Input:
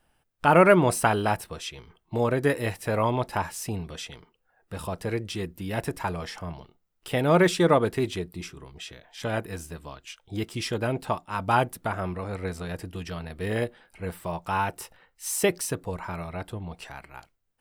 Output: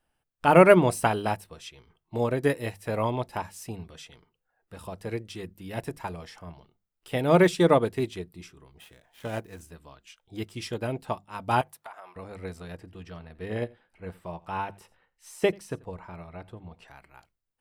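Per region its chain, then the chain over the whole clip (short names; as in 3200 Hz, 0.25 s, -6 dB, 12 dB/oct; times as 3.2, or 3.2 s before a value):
8.79–9.61 median filter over 9 samples + high shelf 7000 Hz +9 dB
11.61–12.16 resonant high-pass 870 Hz, resonance Q 1.6 + compressor 4:1, threshold -30 dBFS
12.75–16.88 LPF 3000 Hz 6 dB/oct + echo 86 ms -19.5 dB
whole clip: notches 50/100/150/200 Hz; dynamic EQ 1400 Hz, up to -4 dB, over -41 dBFS, Q 1.6; upward expander 1.5:1, over -37 dBFS; gain +3 dB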